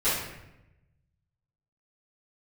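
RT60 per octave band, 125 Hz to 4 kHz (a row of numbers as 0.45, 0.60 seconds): 1.7, 1.2, 1.0, 0.85, 0.85, 0.65 seconds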